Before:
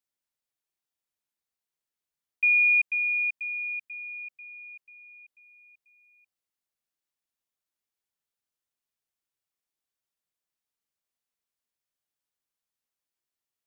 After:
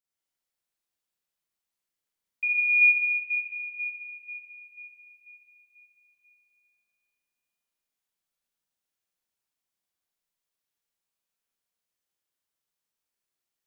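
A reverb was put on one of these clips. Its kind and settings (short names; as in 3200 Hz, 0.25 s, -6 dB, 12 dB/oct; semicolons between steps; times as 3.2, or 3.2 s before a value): Schroeder reverb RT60 2.3 s, combs from 33 ms, DRR -6.5 dB; gain -5 dB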